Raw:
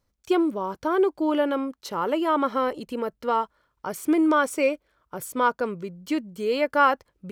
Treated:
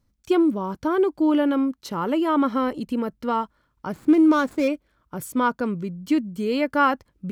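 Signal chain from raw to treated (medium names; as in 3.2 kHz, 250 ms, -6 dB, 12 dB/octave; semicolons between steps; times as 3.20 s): 3.92–4.68 s: median filter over 15 samples; resonant low shelf 340 Hz +6.5 dB, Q 1.5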